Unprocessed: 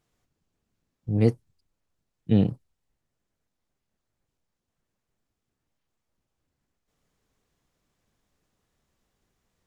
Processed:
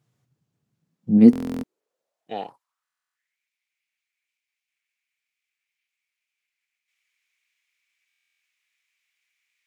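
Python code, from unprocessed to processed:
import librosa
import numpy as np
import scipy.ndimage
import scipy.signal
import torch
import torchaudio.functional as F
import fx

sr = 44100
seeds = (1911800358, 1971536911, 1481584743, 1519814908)

y = fx.filter_sweep_highpass(x, sr, from_hz=130.0, to_hz=2300.0, start_s=0.7, end_s=3.4, q=6.5)
y = fx.buffer_glitch(y, sr, at_s=(1.31, 2.83, 8.09), block=1024, repeats=13)
y = y * librosa.db_to_amplitude(-1.0)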